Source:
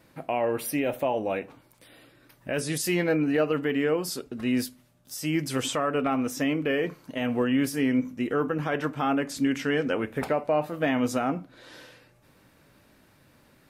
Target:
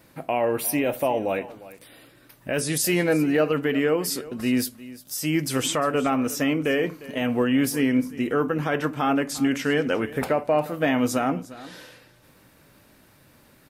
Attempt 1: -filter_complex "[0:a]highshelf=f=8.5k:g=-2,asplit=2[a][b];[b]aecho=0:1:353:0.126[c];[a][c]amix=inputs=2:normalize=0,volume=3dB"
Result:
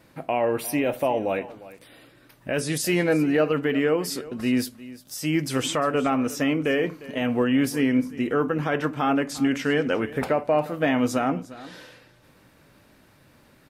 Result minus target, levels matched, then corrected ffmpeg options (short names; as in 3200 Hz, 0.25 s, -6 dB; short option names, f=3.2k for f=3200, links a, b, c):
8000 Hz band -4.0 dB
-filter_complex "[0:a]highshelf=f=8.5k:g=7,asplit=2[a][b];[b]aecho=0:1:353:0.126[c];[a][c]amix=inputs=2:normalize=0,volume=3dB"